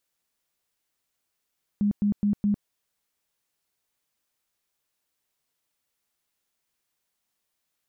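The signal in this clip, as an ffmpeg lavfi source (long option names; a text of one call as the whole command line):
ffmpeg -f lavfi -i "aevalsrc='0.106*sin(2*PI*205*mod(t,0.21))*lt(mod(t,0.21),21/205)':duration=0.84:sample_rate=44100" out.wav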